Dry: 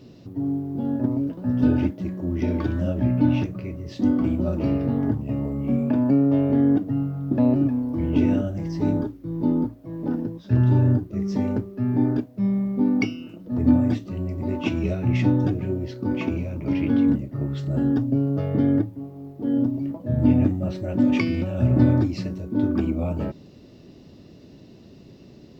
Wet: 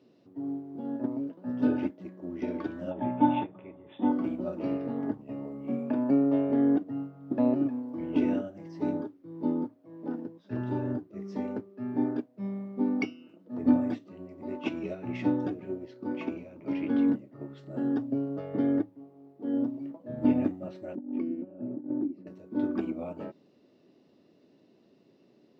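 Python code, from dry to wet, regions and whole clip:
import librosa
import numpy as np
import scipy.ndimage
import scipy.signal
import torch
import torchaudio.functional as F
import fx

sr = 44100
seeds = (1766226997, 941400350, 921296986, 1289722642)

y = fx.chain(x, sr, fx.air_absorb(metres=66.0),
    fx.resample_bad(factor=6, down='none', up='filtered'),
    fx.small_body(hz=(860.0, 3500.0), ring_ms=20, db=14), at=(2.91, 4.12))
y = fx.chain(y, sr, fx.bandpass_q(hz=290.0, q=2.1),
    fx.over_compress(threshold_db=-23.0, ratio=-0.5), at=(20.95, 22.27))
y = scipy.signal.sosfilt(scipy.signal.butter(2, 280.0, 'highpass', fs=sr, output='sos'), y)
y = fx.high_shelf(y, sr, hz=4100.0, db=-11.0)
y = fx.upward_expand(y, sr, threshold_db=-38.0, expansion=1.5)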